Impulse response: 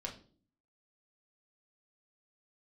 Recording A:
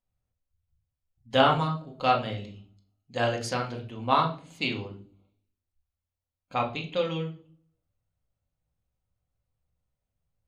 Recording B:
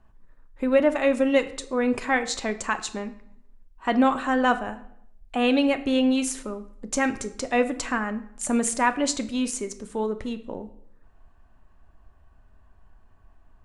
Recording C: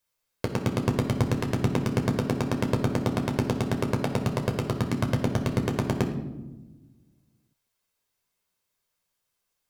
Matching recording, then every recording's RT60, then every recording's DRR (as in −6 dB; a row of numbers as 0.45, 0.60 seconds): A; non-exponential decay, 0.75 s, 1.1 s; −0.5, 8.5, 2.0 decibels